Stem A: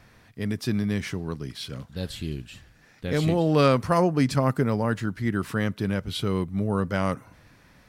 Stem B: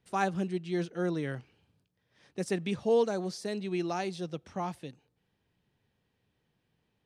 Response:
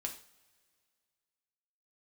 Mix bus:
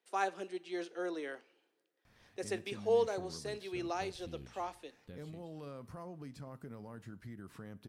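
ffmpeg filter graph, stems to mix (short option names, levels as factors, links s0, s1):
-filter_complex "[0:a]acrossover=split=1200|7900[s0][s1][s2];[s0]acompressor=threshold=0.0447:ratio=4[s3];[s1]acompressor=threshold=0.00501:ratio=4[s4];[s2]acompressor=threshold=0.00158:ratio=4[s5];[s3][s4][s5]amix=inputs=3:normalize=0,alimiter=limit=0.075:level=0:latency=1:release=41,acompressor=threshold=0.0316:ratio=6,adelay=2050,volume=0.178,asplit=2[s6][s7];[s7]volume=0.355[s8];[1:a]highpass=f=340:w=0.5412,highpass=f=340:w=1.3066,volume=0.501,asplit=2[s9][s10];[s10]volume=0.398[s11];[2:a]atrim=start_sample=2205[s12];[s8][s11]amix=inputs=2:normalize=0[s13];[s13][s12]afir=irnorm=-1:irlink=0[s14];[s6][s9][s14]amix=inputs=3:normalize=0"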